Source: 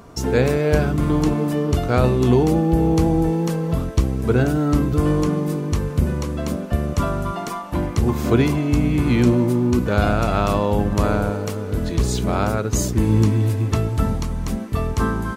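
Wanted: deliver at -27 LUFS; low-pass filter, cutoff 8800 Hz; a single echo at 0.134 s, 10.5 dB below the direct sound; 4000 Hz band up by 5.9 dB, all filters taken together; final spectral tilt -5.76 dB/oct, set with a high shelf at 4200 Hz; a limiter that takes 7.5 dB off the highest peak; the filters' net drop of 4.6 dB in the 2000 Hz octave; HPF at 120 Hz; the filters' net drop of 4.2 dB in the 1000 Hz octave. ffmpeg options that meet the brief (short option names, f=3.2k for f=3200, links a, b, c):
-af "highpass=120,lowpass=8.8k,equalizer=f=1k:t=o:g=-4.5,equalizer=f=2k:t=o:g=-8,equalizer=f=4k:t=o:g=5,highshelf=f=4.2k:g=8.5,alimiter=limit=-11.5dB:level=0:latency=1,aecho=1:1:134:0.299,volume=-4.5dB"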